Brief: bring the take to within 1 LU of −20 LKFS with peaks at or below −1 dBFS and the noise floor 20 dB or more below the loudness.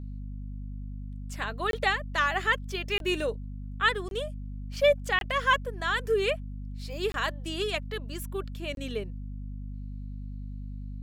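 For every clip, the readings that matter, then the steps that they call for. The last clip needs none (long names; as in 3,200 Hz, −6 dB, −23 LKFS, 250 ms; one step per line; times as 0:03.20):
number of dropouts 6; longest dropout 22 ms; mains hum 50 Hz; hum harmonics up to 250 Hz; level of the hum −35 dBFS; integrated loudness −29.0 LKFS; sample peak −11.5 dBFS; target loudness −20.0 LKFS
→ repair the gap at 0:01.71/0:02.98/0:04.09/0:05.19/0:07.12/0:08.75, 22 ms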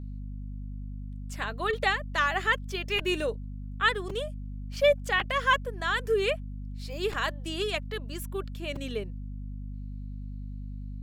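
number of dropouts 0; mains hum 50 Hz; hum harmonics up to 250 Hz; level of the hum −35 dBFS
→ mains-hum notches 50/100/150/200/250 Hz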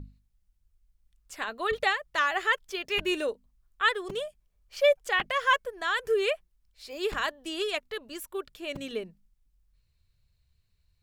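mains hum none found; integrated loudness −29.0 LKFS; sample peak −11.5 dBFS; target loudness −20.0 LKFS
→ level +9 dB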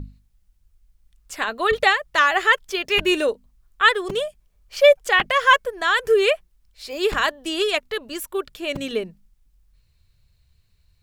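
integrated loudness −20.0 LKFS; sample peak −2.5 dBFS; background noise floor −64 dBFS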